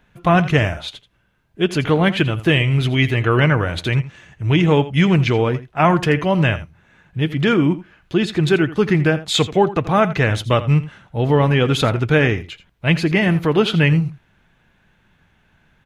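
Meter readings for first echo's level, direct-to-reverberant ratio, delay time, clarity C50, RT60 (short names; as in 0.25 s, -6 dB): -15.5 dB, none, 83 ms, none, none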